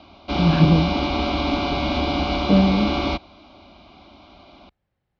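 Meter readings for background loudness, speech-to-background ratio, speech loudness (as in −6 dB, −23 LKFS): −23.0 LKFS, 3.5 dB, −19.5 LKFS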